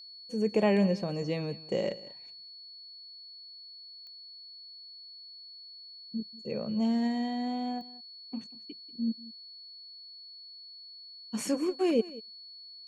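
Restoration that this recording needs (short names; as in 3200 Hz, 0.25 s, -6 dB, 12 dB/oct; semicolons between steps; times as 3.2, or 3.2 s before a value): de-click; notch 4400 Hz, Q 30; inverse comb 0.189 s -19 dB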